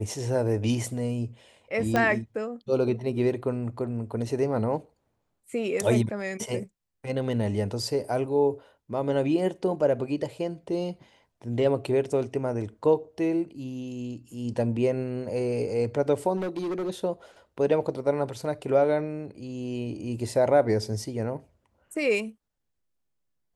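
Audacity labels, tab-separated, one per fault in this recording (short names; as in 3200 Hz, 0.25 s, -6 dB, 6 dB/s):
1.960000	1.960000	pop -11 dBFS
16.360000	16.900000	clipped -27 dBFS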